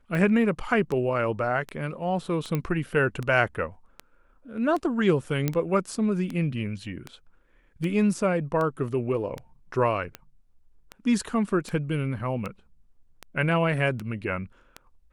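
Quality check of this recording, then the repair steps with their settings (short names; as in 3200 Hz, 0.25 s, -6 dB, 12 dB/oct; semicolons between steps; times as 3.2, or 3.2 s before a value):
tick 78 rpm -19 dBFS
2.55 pop -15 dBFS
5.48 pop -11 dBFS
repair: de-click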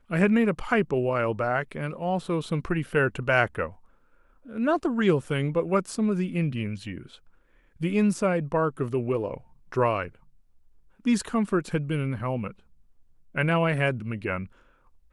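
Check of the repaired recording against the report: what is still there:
2.55 pop
5.48 pop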